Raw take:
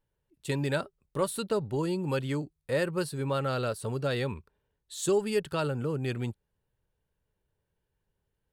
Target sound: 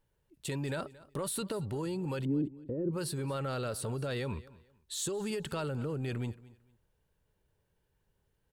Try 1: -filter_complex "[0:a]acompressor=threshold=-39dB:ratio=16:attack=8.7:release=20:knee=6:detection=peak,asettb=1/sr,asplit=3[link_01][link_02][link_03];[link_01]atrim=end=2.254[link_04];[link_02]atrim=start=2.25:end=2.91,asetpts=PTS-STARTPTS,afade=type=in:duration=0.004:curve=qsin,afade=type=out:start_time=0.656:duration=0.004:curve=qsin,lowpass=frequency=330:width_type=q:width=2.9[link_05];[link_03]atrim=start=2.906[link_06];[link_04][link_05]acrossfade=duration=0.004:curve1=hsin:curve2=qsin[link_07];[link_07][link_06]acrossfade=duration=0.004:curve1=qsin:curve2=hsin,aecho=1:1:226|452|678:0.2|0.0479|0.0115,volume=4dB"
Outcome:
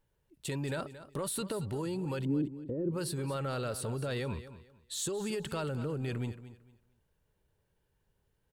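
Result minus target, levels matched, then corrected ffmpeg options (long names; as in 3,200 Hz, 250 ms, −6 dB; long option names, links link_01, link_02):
echo-to-direct +6 dB
-filter_complex "[0:a]acompressor=threshold=-39dB:ratio=16:attack=8.7:release=20:knee=6:detection=peak,asettb=1/sr,asplit=3[link_01][link_02][link_03];[link_01]atrim=end=2.254[link_04];[link_02]atrim=start=2.25:end=2.91,asetpts=PTS-STARTPTS,afade=type=in:duration=0.004:curve=qsin,afade=type=out:start_time=0.656:duration=0.004:curve=qsin,lowpass=frequency=330:width_type=q:width=2.9[link_05];[link_03]atrim=start=2.906[link_06];[link_04][link_05]acrossfade=duration=0.004:curve1=hsin:curve2=qsin[link_07];[link_07][link_06]acrossfade=duration=0.004:curve1=qsin:curve2=hsin,aecho=1:1:226|452:0.1|0.024,volume=4dB"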